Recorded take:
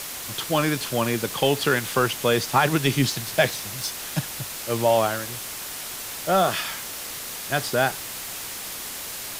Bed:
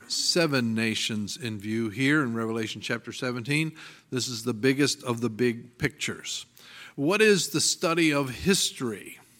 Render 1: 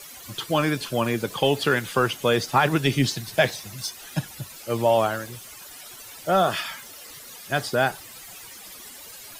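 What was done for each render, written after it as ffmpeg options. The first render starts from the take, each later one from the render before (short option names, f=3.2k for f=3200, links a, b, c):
-af "afftdn=nr=14:nf=-35"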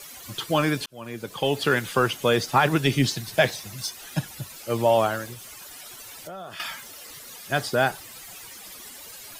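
-filter_complex "[0:a]asettb=1/sr,asplit=3[a][b][c];[a]atrim=end=5.334[d];[b]atrim=start=5.33:end=6.6,asetpts=PTS-STARTPTS,afade=t=in:d=0.004:c=qsin,afade=t=out:st=1.266:d=0.004:c=qsin,acompressor=threshold=-36dB:ratio=6:attack=3.2:release=140:knee=1:detection=peak[e];[c]atrim=start=6.596[f];[d][e]acrossfade=d=0.004:c1=hsin:c2=qsin[g];[g][f]acrossfade=d=0.004:c1=qsin:c2=hsin,asplit=2[h][i];[h]atrim=end=0.86,asetpts=PTS-STARTPTS,afade=t=out:st=0.856:d=0.004:c=hsin[j];[i]atrim=start=0.86,asetpts=PTS-STARTPTS,afade=t=in:d=0.87[k];[j][k]concat=n=2:v=0:a=1"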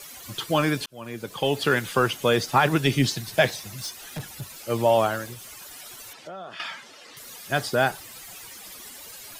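-filter_complex "[0:a]asettb=1/sr,asplit=3[a][b][c];[a]atrim=end=3.794[d];[b]atrim=start=3.79:end=4.5,asetpts=PTS-STARTPTS,afade=t=in:d=0.004:c=qsin,afade=t=out:st=0.706:d=0.004:c=qsin,volume=29dB,asoftclip=hard,volume=-29dB[e];[c]atrim=start=4.496[f];[d][e]acrossfade=d=0.004:c1=hsin:c2=qsin[g];[g][f]acrossfade=d=0.004:c1=qsin:c2=hsin,asettb=1/sr,asplit=3[h][i][j];[h]atrim=end=6.134[k];[i]atrim=start=6.13:end=7.17,asetpts=PTS-STARTPTS,afade=t=in:d=0.004:c=qsin,afade=t=out:st=1.036:d=0.004:c=qsin,highpass=170,lowpass=4.8k[l];[j]atrim=start=7.166[m];[k][l]acrossfade=d=0.004:c1=hsin:c2=qsin[n];[n][m]acrossfade=d=0.004:c1=qsin:c2=hsin"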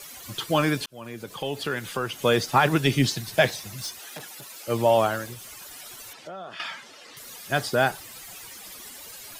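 -filter_complex "[0:a]asettb=1/sr,asplit=3[a][b][c];[a]atrim=end=0.884[d];[b]atrim=start=0.88:end=2.19,asetpts=PTS-STARTPTS,afade=t=in:d=0.004:c=qsin,afade=t=out:st=1.306:d=0.004:c=qsin,acompressor=threshold=-36dB:ratio=1.5:attack=3.2:release=140:knee=1:detection=peak[e];[c]atrim=start=2.186[f];[d][e]acrossfade=d=0.004:c1=hsin:c2=qsin[g];[g][f]acrossfade=d=0.004:c1=qsin:c2=hsin,asettb=1/sr,asplit=3[h][i][j];[h]atrim=end=4.004[k];[i]atrim=start=4:end=4.68,asetpts=PTS-STARTPTS,afade=t=in:d=0.004:c=qsin,afade=t=out:st=0.676:d=0.004:c=qsin,highpass=320[l];[j]atrim=start=4.676[m];[k][l]acrossfade=d=0.004:c1=hsin:c2=qsin[n];[n][m]acrossfade=d=0.004:c1=qsin:c2=hsin"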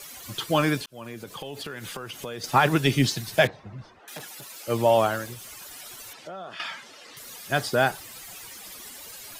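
-filter_complex "[0:a]asettb=1/sr,asplit=3[a][b][c];[a]atrim=end=0.794[d];[b]atrim=start=0.79:end=2.44,asetpts=PTS-STARTPTS,afade=t=in:d=0.004:c=qsin,afade=t=out:st=1.646:d=0.004:c=qsin,acompressor=threshold=-32dB:ratio=6:attack=3.2:release=140:knee=1:detection=peak[e];[c]atrim=start=2.436[f];[d][e]acrossfade=d=0.004:c1=hsin:c2=qsin[g];[g][f]acrossfade=d=0.004:c1=qsin:c2=hsin,asettb=1/sr,asplit=3[h][i][j];[h]atrim=end=3.474[k];[i]atrim=start=3.47:end=4.08,asetpts=PTS-STARTPTS,afade=t=in:d=0.004:c=qsin,afade=t=out:st=0.606:d=0.004:c=qsin,lowpass=1.2k[l];[j]atrim=start=4.076[m];[k][l]acrossfade=d=0.004:c1=hsin:c2=qsin[n];[n][m]acrossfade=d=0.004:c1=qsin:c2=hsin"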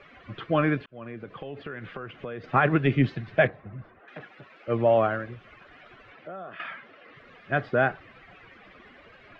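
-af "lowpass=f=2.3k:w=0.5412,lowpass=f=2.3k:w=1.3066,equalizer=f=900:t=o:w=0.23:g=-10.5"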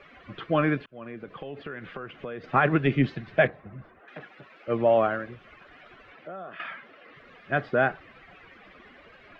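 -af "equalizer=f=110:w=3.6:g=-6.5"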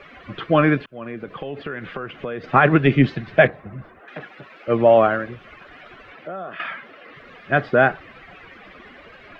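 -af "volume=7.5dB,alimiter=limit=-2dB:level=0:latency=1"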